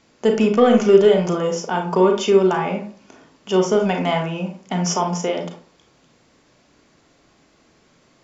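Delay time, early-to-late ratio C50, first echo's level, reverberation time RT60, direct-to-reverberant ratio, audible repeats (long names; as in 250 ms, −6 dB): no echo audible, 7.0 dB, no echo audible, 0.45 s, 3.0 dB, no echo audible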